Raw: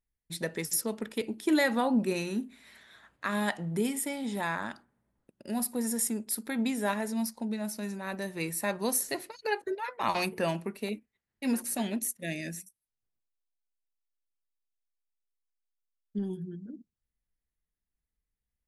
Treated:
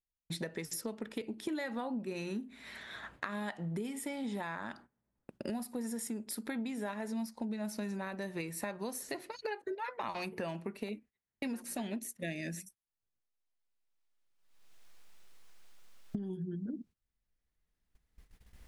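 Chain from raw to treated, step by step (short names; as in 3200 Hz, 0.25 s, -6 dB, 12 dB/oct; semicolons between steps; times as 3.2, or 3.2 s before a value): recorder AGC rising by 11 dB/s; high shelf 7400 Hz -11.5 dB; compressor 5:1, threshold -39 dBFS, peak gain reduction 15.5 dB; gate -59 dBFS, range -15 dB; gain +2.5 dB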